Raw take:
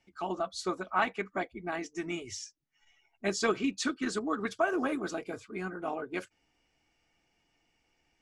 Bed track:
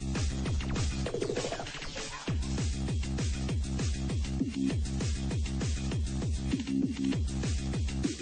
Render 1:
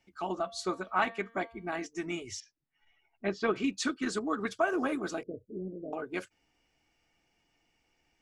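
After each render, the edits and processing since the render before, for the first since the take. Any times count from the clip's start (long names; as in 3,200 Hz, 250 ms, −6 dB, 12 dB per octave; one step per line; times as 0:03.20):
0:00.43–0:01.86: hum removal 229 Hz, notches 20
0:02.40–0:03.56: high-frequency loss of the air 270 metres
0:05.23–0:05.93: Chebyshev low-pass filter 600 Hz, order 6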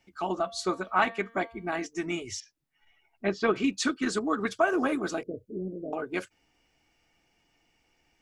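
level +4 dB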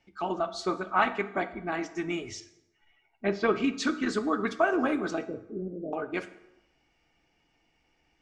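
high-frequency loss of the air 80 metres
dense smooth reverb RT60 0.89 s, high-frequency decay 0.7×, DRR 10.5 dB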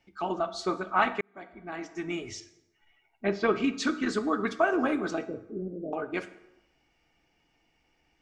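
0:01.21–0:02.29: fade in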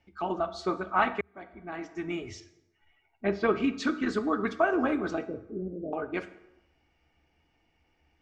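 low-pass filter 3,200 Hz 6 dB per octave
parametric band 77 Hz +14 dB 0.35 octaves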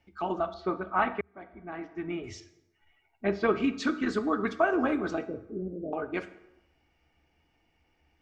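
0:00.54–0:02.24: high-frequency loss of the air 280 metres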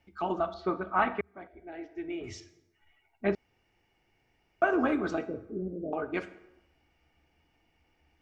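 0:01.47–0:02.21: phaser with its sweep stopped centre 460 Hz, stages 4
0:03.35–0:04.62: fill with room tone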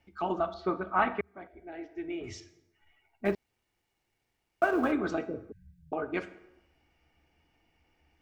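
0:03.25–0:04.92: mu-law and A-law mismatch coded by A
0:05.52–0:05.92: linear-phase brick-wall band-stop 150–1,500 Hz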